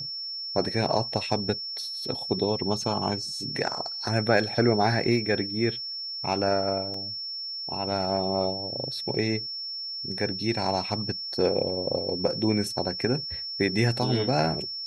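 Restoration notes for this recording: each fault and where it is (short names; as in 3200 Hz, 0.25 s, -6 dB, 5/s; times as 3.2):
tone 5400 Hz -32 dBFS
6.94 gap 3.2 ms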